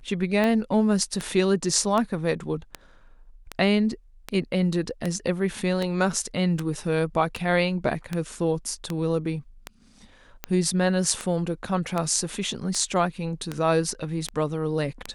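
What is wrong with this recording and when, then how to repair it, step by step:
tick 78 rpm -13 dBFS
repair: de-click

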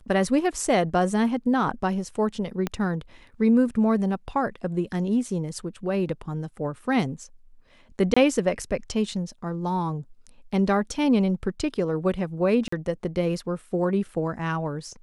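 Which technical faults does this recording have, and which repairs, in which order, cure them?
2.67 s: pop -13 dBFS
8.14–8.16 s: dropout 25 ms
12.68–12.72 s: dropout 44 ms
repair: de-click; interpolate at 8.14 s, 25 ms; interpolate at 12.68 s, 44 ms

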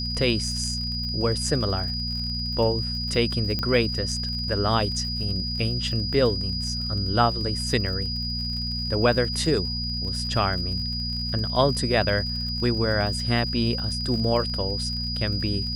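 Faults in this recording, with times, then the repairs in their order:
crackle 57 per s -33 dBFS
hum 60 Hz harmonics 4 -31 dBFS
whine 4.9 kHz -29 dBFS
3.59 s: pop -14 dBFS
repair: de-click; de-hum 60 Hz, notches 4; band-stop 4.9 kHz, Q 30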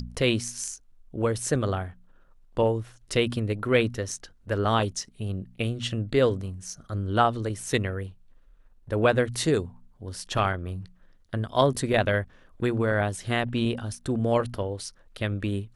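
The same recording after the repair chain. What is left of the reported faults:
nothing left

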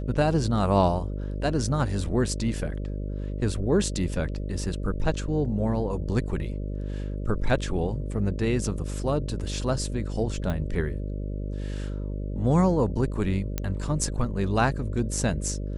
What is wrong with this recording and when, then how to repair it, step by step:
buzz 50 Hz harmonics 12 -31 dBFS
10.50 s: pop -18 dBFS
13.58 s: pop -12 dBFS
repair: de-click; de-hum 50 Hz, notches 12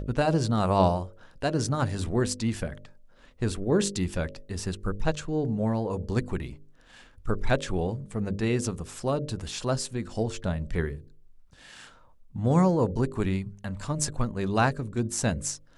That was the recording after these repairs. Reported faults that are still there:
nothing left

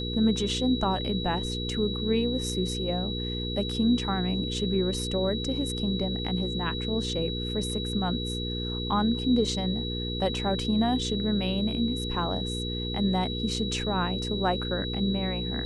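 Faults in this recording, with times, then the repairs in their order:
hum 60 Hz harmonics 8 -33 dBFS
whine 3.9 kHz -34 dBFS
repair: band-stop 3.9 kHz, Q 30; de-hum 60 Hz, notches 8

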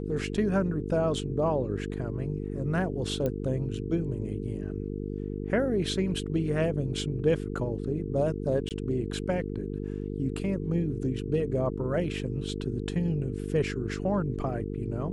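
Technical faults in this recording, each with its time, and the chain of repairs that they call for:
buzz 50 Hz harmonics 9 -34 dBFS
3.26 s: pop -18 dBFS
8.69–8.71 s: dropout 18 ms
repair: de-click; de-hum 50 Hz, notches 9; interpolate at 8.69 s, 18 ms

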